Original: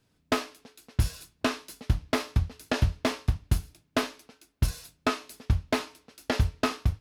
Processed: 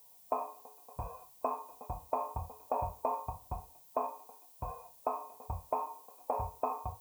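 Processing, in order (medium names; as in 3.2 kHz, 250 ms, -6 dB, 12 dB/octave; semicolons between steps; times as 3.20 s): cascade formant filter a; treble shelf 2 kHz -9.5 dB; small resonant body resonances 510/910/2500 Hz, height 13 dB, ringing for 30 ms; compression 2.5:1, threshold -40 dBFS, peak gain reduction 7 dB; added noise violet -72 dBFS; harmonic-percussive split percussive -9 dB; trim +16 dB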